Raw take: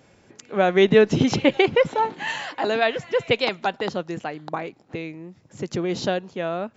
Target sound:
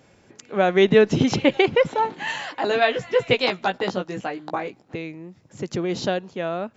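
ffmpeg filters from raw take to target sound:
-filter_complex "[0:a]asettb=1/sr,asplit=3[s0][s1][s2];[s0]atrim=end=2.694[s3];[s1]atrim=start=2.69:end=4.81,asetpts=PTS-STARTPTS,afade=t=in:d=0.004:c=qsin,afade=t=out:st=2.116:d=0.004:c=qsin,asplit=2[s4][s5];[s5]adelay=16,volume=0.668[s6];[s4][s6]amix=inputs=2:normalize=0,atrim=end_sample=93492[s7];[s2]atrim=start=4.806[s8];[s3][s7]acrossfade=d=0.004:c1=hsin:c2=qsin[s9];[s9][s8]acrossfade=d=0.004:c1=qsin:c2=hsin"

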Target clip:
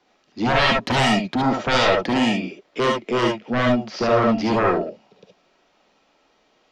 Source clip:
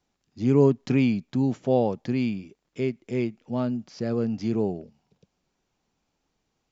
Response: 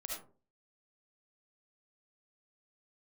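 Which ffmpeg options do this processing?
-filter_complex "[0:a]acrossover=split=240 4900:gain=0.0891 1 0.0891[s0][s1][s2];[s0][s1][s2]amix=inputs=3:normalize=0,aeval=exprs='0.282*sin(PI/2*7.08*val(0)/0.282)':c=same[s3];[1:a]atrim=start_sample=2205,atrim=end_sample=3528[s4];[s3][s4]afir=irnorm=-1:irlink=0"

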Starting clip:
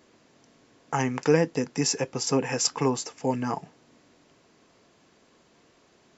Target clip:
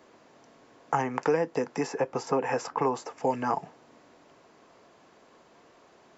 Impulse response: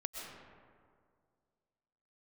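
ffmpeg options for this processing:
-filter_complex "[0:a]equalizer=f=830:w=0.51:g=10,acrossover=split=340|2100[s0][s1][s2];[s0]acompressor=threshold=0.0251:ratio=4[s3];[s1]acompressor=threshold=0.0891:ratio=4[s4];[s2]acompressor=threshold=0.00708:ratio=4[s5];[s3][s4][s5]amix=inputs=3:normalize=0,volume=0.708"

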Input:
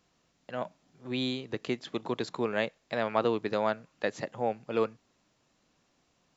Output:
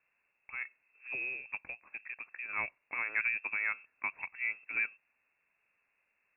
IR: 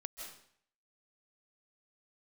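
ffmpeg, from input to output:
-filter_complex "[0:a]asplit=3[s0][s1][s2];[s0]afade=t=out:st=1.6:d=0.02[s3];[s1]acompressor=threshold=0.0178:ratio=4,afade=t=in:st=1.6:d=0.02,afade=t=out:st=2.48:d=0.02[s4];[s2]afade=t=in:st=2.48:d=0.02[s5];[s3][s4][s5]amix=inputs=3:normalize=0,lowpass=f=2400:t=q:w=0.5098,lowpass=f=2400:t=q:w=0.6013,lowpass=f=2400:t=q:w=0.9,lowpass=f=2400:t=q:w=2.563,afreqshift=-2800,volume=0.531"

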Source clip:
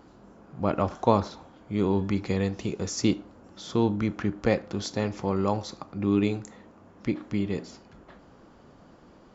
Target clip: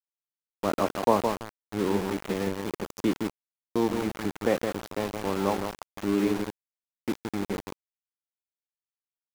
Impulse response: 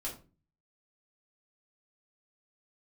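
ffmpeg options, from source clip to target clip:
-filter_complex "[0:a]acrossover=split=190 2100:gain=0.158 1 0.2[s0][s1][s2];[s0][s1][s2]amix=inputs=3:normalize=0,asplit=2[s3][s4];[s4]adelay=165,lowpass=f=1800:p=1,volume=0.562,asplit=2[s5][s6];[s6]adelay=165,lowpass=f=1800:p=1,volume=0.31,asplit=2[s7][s8];[s8]adelay=165,lowpass=f=1800:p=1,volume=0.31,asplit=2[s9][s10];[s10]adelay=165,lowpass=f=1800:p=1,volume=0.31[s11];[s3][s5][s7][s9][s11]amix=inputs=5:normalize=0,aeval=exprs='val(0)*gte(abs(val(0)),0.0355)':c=same"

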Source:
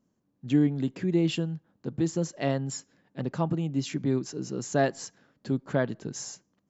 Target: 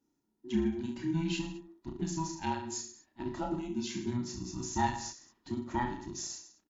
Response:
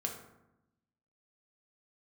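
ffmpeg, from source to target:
-filter_complex "[0:a]afftfilt=real='real(if(between(b,1,1008),(2*floor((b-1)/24)+1)*24-b,b),0)':imag='imag(if(between(b,1,1008),(2*floor((b-1)/24)+1)*24-b,b),0)*if(between(b,1,1008),-1,1)':win_size=2048:overlap=0.75,highshelf=f=4500:g=7,asplit=2[s0][s1];[s1]aecho=0:1:30|66|109.2|161|223.2:0.631|0.398|0.251|0.158|0.1[s2];[s0][s2]amix=inputs=2:normalize=0,asetrate=41625,aresample=44100,atempo=1.05946,volume=0.398"

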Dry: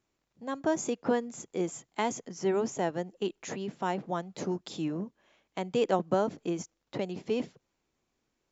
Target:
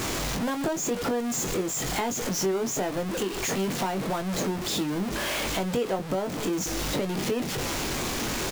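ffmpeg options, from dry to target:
-filter_complex "[0:a]aeval=exprs='val(0)+0.5*0.0422*sgn(val(0))':c=same,acompressor=threshold=0.0282:ratio=4,asplit=2[s0][s1];[s1]adelay=21,volume=0.398[s2];[s0][s2]amix=inputs=2:normalize=0,volume=1.58"

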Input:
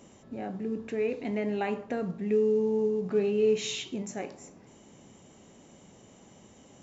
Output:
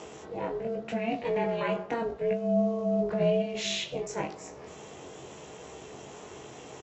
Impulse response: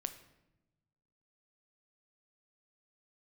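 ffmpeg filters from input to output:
-filter_complex "[0:a]equalizer=f=310:t=o:w=0.23:g=-9.5,asplit=2[s0][s1];[s1]acompressor=mode=upward:threshold=0.0282:ratio=2.5,volume=0.891[s2];[s0][s2]amix=inputs=2:normalize=0,alimiter=limit=0.126:level=0:latency=1:release=13,flanger=delay=19.5:depth=2.2:speed=0.88,aeval=exprs='val(0)*sin(2*PI*230*n/s)':c=same,highpass=120,lowpass=6300,asplit=2[s3][s4];[s4]adelay=14,volume=0.251[s5];[s3][s5]amix=inputs=2:normalize=0,volume=1.58"

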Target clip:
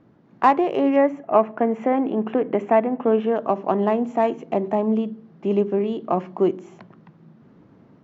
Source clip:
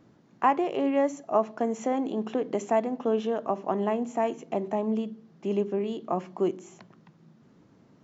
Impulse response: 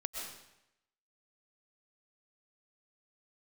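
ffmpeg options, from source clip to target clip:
-filter_complex "[0:a]adynamicsmooth=sensitivity=2:basefreq=3100,asettb=1/sr,asplit=3[s0][s1][s2];[s0]atrim=end=0.964[s3];[s1]atrim=start=0.96:end=3.36,asetpts=PTS-STARTPTS,afade=t=in:d=0.004:c=qsin,afade=t=out:st=2.396:d=0.004:c=qsin,highshelf=f=3300:t=q:w=1.5:g=-10[s4];[s2]atrim=start=3.356[s5];[s3][s4]acrossfade=d=0.004:c1=hsin:c2=qsin[s6];[s6][s5]acrossfade=d=0.004:c1=qsin:c2=hsin,dynaudnorm=f=170:g=3:m=1.58,volume=1.41"

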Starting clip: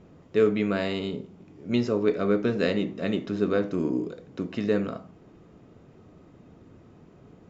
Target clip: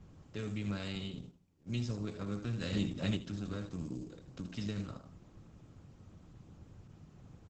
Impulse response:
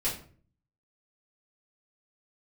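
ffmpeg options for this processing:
-filter_complex "[0:a]asplit=3[s0][s1][s2];[s0]afade=t=out:st=4.32:d=0.02[s3];[s1]adynamicequalizer=threshold=0.00158:dfrequency=5300:dqfactor=1.7:tfrequency=5300:tqfactor=1.7:attack=5:release=100:ratio=0.375:range=3:mode=boostabove:tftype=bell,afade=t=in:st=4.32:d=0.02,afade=t=out:st=4.78:d=0.02[s4];[s2]afade=t=in:st=4.78:d=0.02[s5];[s3][s4][s5]amix=inputs=3:normalize=0,aecho=1:1:3.7:0.37,asettb=1/sr,asplit=3[s6][s7][s8];[s6]atrim=end=0.954[s9];[s7]atrim=start=0.95:end=1.97,asetpts=PTS-STARTPTS,afade=t=in:d=0.004:c=qsin,afade=t=out:st=1.016:d=0.004:c=qsin,agate=range=0.0224:threshold=0.0158:ratio=3:detection=peak[s10];[s8]atrim=start=1.966[s11];[s9][s10]acrossfade=d=0.004:c1=hsin:c2=qsin[s12];[s12][s11]acrossfade=d=0.004:c1=qsin:c2=hsin,acrusher=bits=9:mode=log:mix=0:aa=0.000001,acrossover=split=170|3000[s13][s14][s15];[s14]acompressor=threshold=0.0141:ratio=2[s16];[s13][s16][s15]amix=inputs=3:normalize=0,aecho=1:1:78|156:0.355|0.0568,asettb=1/sr,asplit=3[s17][s18][s19];[s17]atrim=end=2.724[s20];[s18]atrim=start=2.72:end=3.17,asetpts=PTS-STARTPTS,afade=t=in:d=0.004:c=qsin,afade=t=out:st=0.446:d=0.004:c=qsin,acontrast=31[s21];[s19]atrim=start=3.166[s22];[s20][s21]acrossfade=d=0.004:c1=hsin:c2=qsin[s23];[s23][s22]acrossfade=d=0.004:c1=qsin:c2=hsin,equalizer=f=125:t=o:w=1:g=5,equalizer=f=250:t=o:w=1:g=-12,equalizer=f=500:t=o:w=1:g=-10,equalizer=f=1000:t=o:w=1:g=-5,equalizer=f=2000:t=o:w=1:g=-8,equalizer=f=4000:t=o:w=1:g=-4,volume=1.19" -ar 48000 -c:a libopus -b:a 10k

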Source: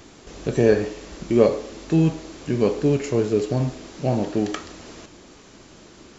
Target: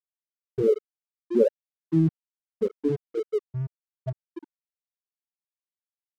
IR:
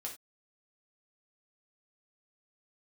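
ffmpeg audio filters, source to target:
-af "afftfilt=real='re*gte(hypot(re,im),0.891)':imag='im*gte(hypot(re,im),0.891)':win_size=1024:overlap=0.75,aeval=exprs='sgn(val(0))*max(abs(val(0))-0.00944,0)':c=same,volume=0.75"

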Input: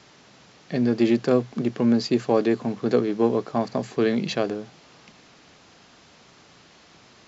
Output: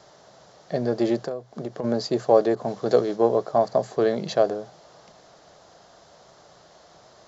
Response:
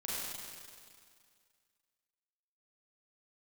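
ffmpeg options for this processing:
-filter_complex "[0:a]equalizer=f=100:t=o:w=0.67:g=-3,equalizer=f=250:t=o:w=0.67:g=-9,equalizer=f=630:t=o:w=0.67:g=10,equalizer=f=2500:t=o:w=0.67:g=-12,asplit=3[s0][s1][s2];[s0]afade=t=out:st=1.24:d=0.02[s3];[s1]acompressor=threshold=0.0447:ratio=16,afade=t=in:st=1.24:d=0.02,afade=t=out:st=1.83:d=0.02[s4];[s2]afade=t=in:st=1.83:d=0.02[s5];[s3][s4][s5]amix=inputs=3:normalize=0,asettb=1/sr,asplit=3[s6][s7][s8];[s6]atrim=end=2.554[s9];[s7]atrim=start=2.55:end=3.16,asetpts=PTS-STARTPTS,afade=t=in:d=0.004:c=qsin,afade=t=out:st=0.606:d=0.004:c=qsin,adynamicequalizer=threshold=0.0126:dfrequency=2200:dqfactor=0.7:tfrequency=2200:tqfactor=0.7:attack=5:release=100:ratio=0.375:range=3:mode=boostabove:tftype=highshelf[s10];[s8]atrim=start=3.156[s11];[s9][s10]acrossfade=d=0.004:c1=hsin:c2=qsin[s12];[s12][s11]acrossfade=d=0.004:c1=qsin:c2=hsin"

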